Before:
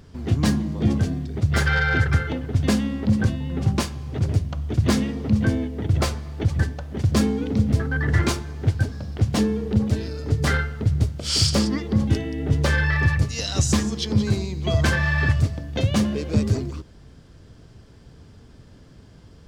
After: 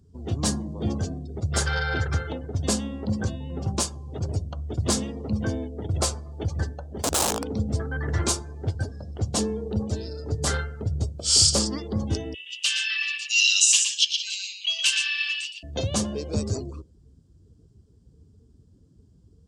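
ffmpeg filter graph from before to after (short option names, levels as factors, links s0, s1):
-filter_complex "[0:a]asettb=1/sr,asplit=3[s0][s1][s2];[s0]atrim=end=6.774[s3];[s1]atrim=start=6.77:end=7.51,asetpts=PTS-STARTPTS,afade=t=in:d=0.004:c=qsin,afade=t=out:st=0.736:d=0.004:c=qsin,acrossover=split=3100[s4][s5];[s5]acompressor=threshold=0.00794:ratio=4:attack=1:release=60[s6];[s4][s6]amix=inputs=2:normalize=0,highshelf=f=9400:g=-3.5,aeval=exprs='(mod(7.08*val(0)+1,2)-1)/7.08':c=same[s7];[s2]atrim=start=7.506[s8];[s3][s7]acrossfade=d=0.004:c1=hsin:c2=qsin[s9];[s9][s8]acrossfade=d=0.004:c1=qsin:c2=hsin,asettb=1/sr,asplit=3[s10][s11][s12];[s10]atrim=end=12.344[s13];[s11]atrim=start=12.34:end=15.63,asetpts=PTS-STARTPTS,afade=t=in:d=0.004:c=qsin,afade=t=out:st=3.286:d=0.004:c=qsin,highpass=f=2800:t=q:w=14,aecho=1:1:118:0.531,atrim=end_sample=145089[s14];[s12]atrim=start=15.626[s15];[s13][s14]acrossfade=d=0.004:c1=hsin:c2=qsin[s16];[s16][s15]acrossfade=d=0.004:c1=qsin:c2=hsin,highpass=63,afftdn=nr=21:nf=-43,equalizer=f=125:t=o:w=1:g=-8,equalizer=f=250:t=o:w=1:g=-6,equalizer=f=2000:t=o:w=1:g=-11,equalizer=f=8000:t=o:w=1:g=11"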